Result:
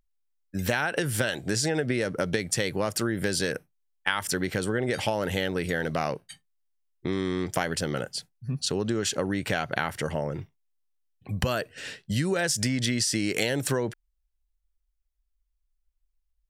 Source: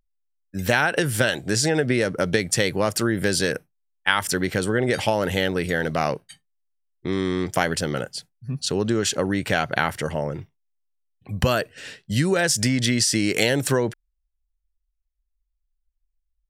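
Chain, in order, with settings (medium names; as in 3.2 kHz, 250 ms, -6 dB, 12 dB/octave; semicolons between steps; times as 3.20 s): compression 2:1, threshold -27 dBFS, peak gain reduction 8 dB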